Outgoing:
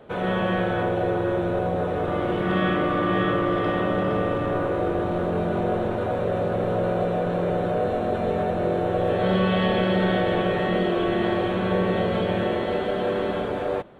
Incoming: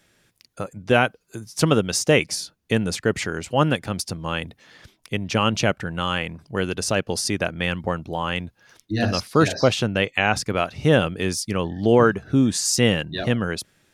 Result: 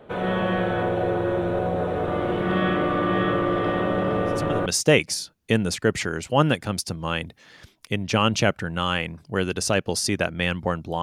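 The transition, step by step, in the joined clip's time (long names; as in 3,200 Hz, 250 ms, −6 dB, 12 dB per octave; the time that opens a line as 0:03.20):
outgoing
0:04.25: mix in incoming from 0:01.46 0.41 s −13 dB
0:04.66: continue with incoming from 0:01.87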